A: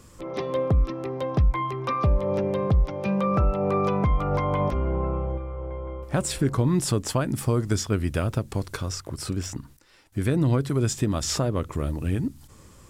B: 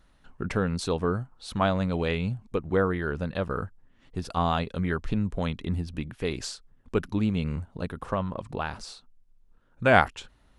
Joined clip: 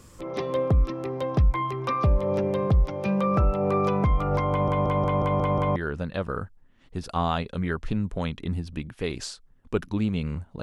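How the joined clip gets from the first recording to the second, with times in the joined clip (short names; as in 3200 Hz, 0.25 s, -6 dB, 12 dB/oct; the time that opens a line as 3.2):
A
4.5 stutter in place 0.18 s, 7 plays
5.76 switch to B from 2.97 s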